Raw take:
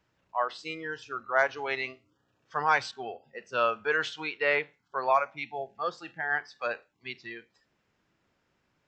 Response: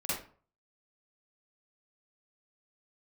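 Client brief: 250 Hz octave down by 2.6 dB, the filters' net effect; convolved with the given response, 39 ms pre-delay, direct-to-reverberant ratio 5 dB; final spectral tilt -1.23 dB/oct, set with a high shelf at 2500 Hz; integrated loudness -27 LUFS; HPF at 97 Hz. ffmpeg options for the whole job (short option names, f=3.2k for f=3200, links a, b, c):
-filter_complex "[0:a]highpass=97,equalizer=f=250:t=o:g=-3.5,highshelf=f=2.5k:g=-9,asplit=2[a][b];[1:a]atrim=start_sample=2205,adelay=39[c];[b][c]afir=irnorm=-1:irlink=0,volume=-10.5dB[d];[a][d]amix=inputs=2:normalize=0,volume=4.5dB"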